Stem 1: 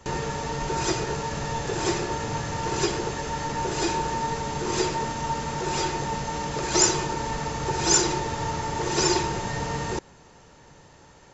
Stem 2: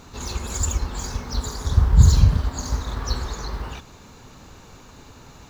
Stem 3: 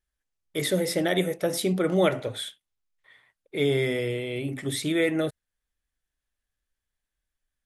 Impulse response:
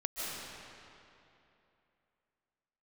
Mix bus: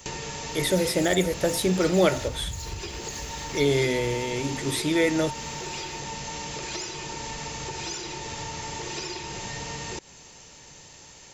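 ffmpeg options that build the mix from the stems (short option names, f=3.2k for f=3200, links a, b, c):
-filter_complex "[0:a]acrossover=split=4100[a][b];[b]acompressor=threshold=-45dB:ratio=4:attack=1:release=60[c];[a][c]amix=inputs=2:normalize=0,volume=-1.5dB[d];[1:a]adelay=500,volume=-9dB[e];[2:a]volume=1.5dB[f];[d][e]amix=inputs=2:normalize=0,aexciter=amount=2.8:drive=6.9:freq=2.1k,acompressor=threshold=-31dB:ratio=10,volume=0dB[g];[f][g]amix=inputs=2:normalize=0"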